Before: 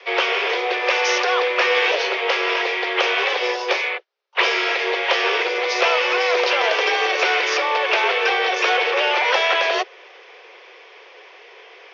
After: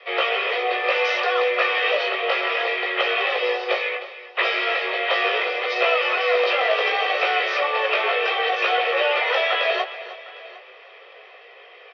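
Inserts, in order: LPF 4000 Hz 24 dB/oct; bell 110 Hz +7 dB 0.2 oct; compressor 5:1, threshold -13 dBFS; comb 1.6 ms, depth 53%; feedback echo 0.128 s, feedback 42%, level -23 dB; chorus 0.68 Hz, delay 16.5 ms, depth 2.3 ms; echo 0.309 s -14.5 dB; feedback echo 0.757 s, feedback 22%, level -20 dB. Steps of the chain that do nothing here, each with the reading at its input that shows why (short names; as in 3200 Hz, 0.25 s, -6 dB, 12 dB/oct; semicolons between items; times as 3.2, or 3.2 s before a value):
bell 110 Hz: input band starts at 320 Hz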